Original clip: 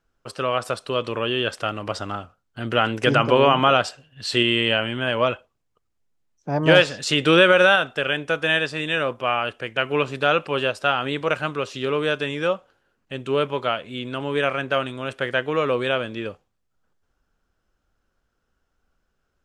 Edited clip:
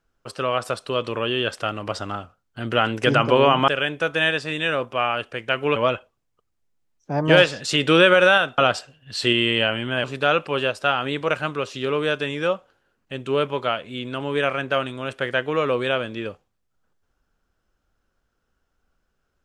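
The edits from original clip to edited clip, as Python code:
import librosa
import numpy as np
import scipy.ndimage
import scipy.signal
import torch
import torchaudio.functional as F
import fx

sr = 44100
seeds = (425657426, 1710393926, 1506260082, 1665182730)

y = fx.edit(x, sr, fx.swap(start_s=3.68, length_s=1.46, other_s=7.96, other_length_s=2.08), tone=tone)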